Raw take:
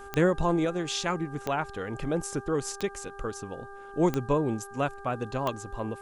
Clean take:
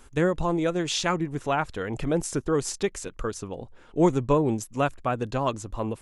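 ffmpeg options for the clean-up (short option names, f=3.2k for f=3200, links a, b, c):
-af "adeclick=t=4,bandreject=f=398.2:t=h:w=4,bandreject=f=796.4:t=h:w=4,bandreject=f=1.1946k:t=h:w=4,bandreject=f=1.5928k:t=h:w=4,agate=range=-21dB:threshold=-36dB,asetnsamples=n=441:p=0,asendcmd='0.65 volume volume 4dB',volume=0dB"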